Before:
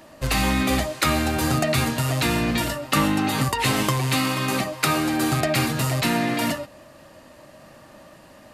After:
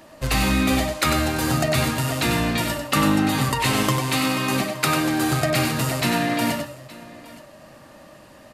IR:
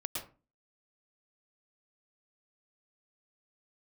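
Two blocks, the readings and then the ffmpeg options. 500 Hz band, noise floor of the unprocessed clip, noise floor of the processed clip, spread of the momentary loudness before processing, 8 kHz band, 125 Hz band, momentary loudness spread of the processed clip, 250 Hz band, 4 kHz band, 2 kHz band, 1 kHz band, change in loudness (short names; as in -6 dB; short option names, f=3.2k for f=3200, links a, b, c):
+1.0 dB, -49 dBFS, -47 dBFS, 3 LU, +1.0 dB, +0.5 dB, 5 LU, +1.5 dB, +1.0 dB, +1.0 dB, +0.5 dB, +1.0 dB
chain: -af "aecho=1:1:96|869:0.473|0.1"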